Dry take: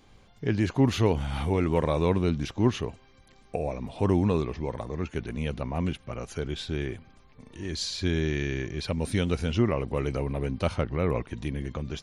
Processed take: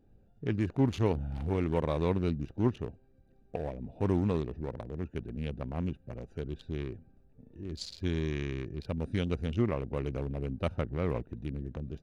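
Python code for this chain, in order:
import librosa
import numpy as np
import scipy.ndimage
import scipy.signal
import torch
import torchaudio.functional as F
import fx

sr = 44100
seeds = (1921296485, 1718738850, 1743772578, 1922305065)

y = fx.wiener(x, sr, points=41)
y = y * 10.0 ** (-4.5 / 20.0)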